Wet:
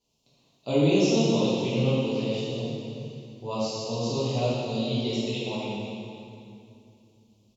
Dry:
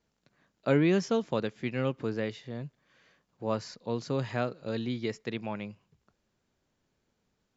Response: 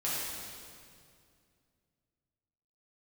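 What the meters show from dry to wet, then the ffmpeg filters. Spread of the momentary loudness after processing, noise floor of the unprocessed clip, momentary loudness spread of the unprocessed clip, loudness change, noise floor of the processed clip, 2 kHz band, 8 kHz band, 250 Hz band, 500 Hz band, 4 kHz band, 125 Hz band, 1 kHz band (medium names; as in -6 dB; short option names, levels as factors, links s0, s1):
17 LU, -79 dBFS, 14 LU, +5.0 dB, -66 dBFS, +0.5 dB, no reading, +5.5 dB, +5.0 dB, +11.5 dB, +6.5 dB, +3.5 dB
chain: -filter_complex "[0:a]firequalizer=gain_entry='entry(990,0);entry(1600,-26);entry(2700,7)':delay=0.05:min_phase=1[s0];[1:a]atrim=start_sample=2205,asetrate=37044,aresample=44100[s1];[s0][s1]afir=irnorm=-1:irlink=0,volume=0.668"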